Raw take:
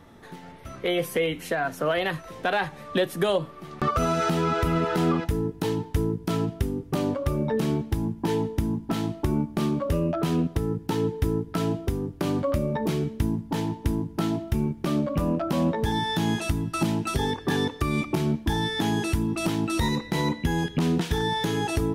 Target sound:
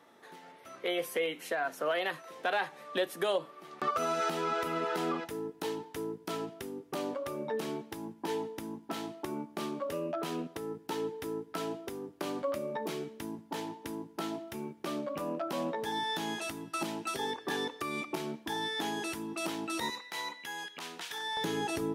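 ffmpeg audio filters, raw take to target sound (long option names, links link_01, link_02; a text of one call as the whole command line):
ffmpeg -i in.wav -af "asetnsamples=nb_out_samples=441:pad=0,asendcmd='19.9 highpass f 990;21.37 highpass f 220',highpass=380,volume=-5.5dB" out.wav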